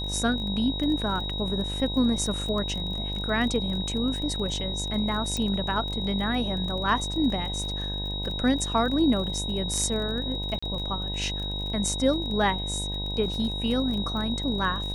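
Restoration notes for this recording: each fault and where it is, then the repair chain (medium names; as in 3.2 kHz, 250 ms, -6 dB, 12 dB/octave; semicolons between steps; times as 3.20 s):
buzz 50 Hz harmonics 20 -33 dBFS
crackle 29 per s -33 dBFS
whine 3.8 kHz -32 dBFS
5.37 s: pop -16 dBFS
10.59–10.62 s: dropout 35 ms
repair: de-click; de-hum 50 Hz, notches 20; band-stop 3.8 kHz, Q 30; interpolate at 10.59 s, 35 ms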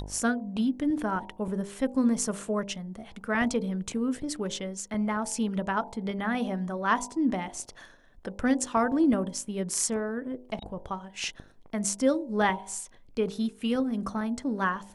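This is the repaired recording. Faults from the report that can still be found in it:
nothing left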